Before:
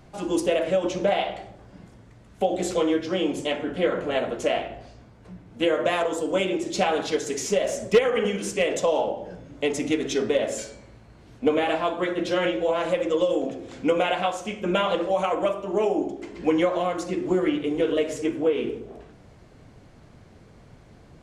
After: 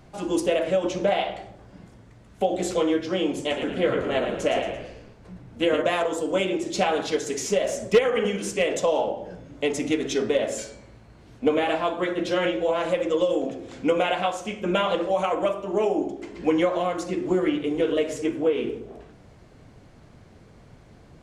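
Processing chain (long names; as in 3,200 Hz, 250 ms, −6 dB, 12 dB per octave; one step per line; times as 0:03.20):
0:03.39–0:05.82: echo with shifted repeats 113 ms, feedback 45%, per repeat −53 Hz, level −7 dB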